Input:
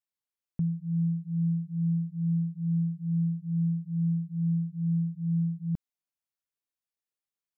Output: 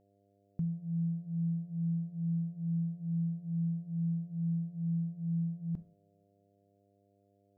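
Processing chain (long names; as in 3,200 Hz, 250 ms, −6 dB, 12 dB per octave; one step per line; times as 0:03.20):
coupled-rooms reverb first 0.41 s, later 2 s, from −26 dB, DRR 12 dB
hum with harmonics 100 Hz, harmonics 7, −65 dBFS −1 dB per octave
level −5 dB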